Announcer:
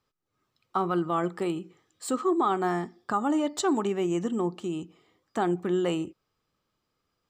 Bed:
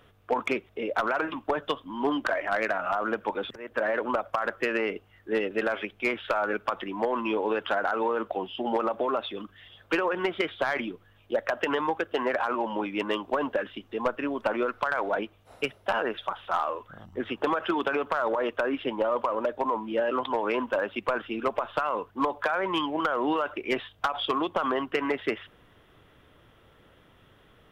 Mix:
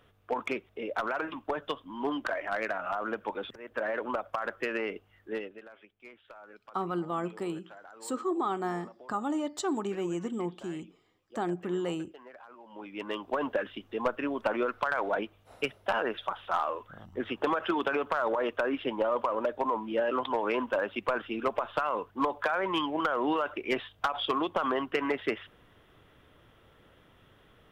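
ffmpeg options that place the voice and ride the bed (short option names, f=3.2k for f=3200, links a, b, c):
-filter_complex "[0:a]adelay=6000,volume=-5.5dB[a];[1:a]volume=16.5dB,afade=t=out:st=5.22:d=0.39:silence=0.11885,afade=t=in:st=12.65:d=0.86:silence=0.0841395[b];[a][b]amix=inputs=2:normalize=0"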